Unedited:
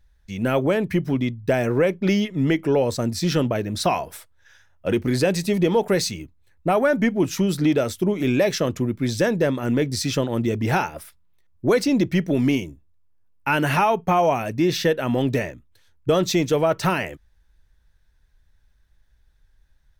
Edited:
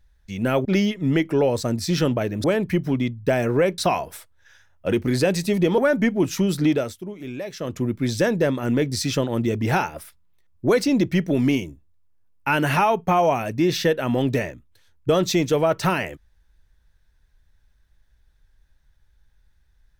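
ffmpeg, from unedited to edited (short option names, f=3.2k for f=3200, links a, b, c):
-filter_complex "[0:a]asplit=7[a][b][c][d][e][f][g];[a]atrim=end=0.652[h];[b]atrim=start=1.988:end=3.782[i];[c]atrim=start=0.648:end=1.992[j];[d]atrim=start=3.778:end=5.782[k];[e]atrim=start=6.778:end=8.01,asetpts=PTS-STARTPTS,afade=t=out:st=0.912:d=0.32:silence=0.237137[l];[f]atrim=start=8.01:end=8.55,asetpts=PTS-STARTPTS,volume=-12.5dB[m];[g]atrim=start=8.55,asetpts=PTS-STARTPTS,afade=t=in:d=0.32:silence=0.237137[n];[h][i]acrossfade=d=0.004:c1=hsin:c2=hsin[o];[o][j]acrossfade=d=0.004:c1=hsin:c2=hsin[p];[p][k]acrossfade=d=0.004:c1=hsin:c2=hsin[q];[l][m][n]concat=n=3:v=0:a=1[r];[q][r]acrossfade=d=0.004:c1=hsin:c2=hsin"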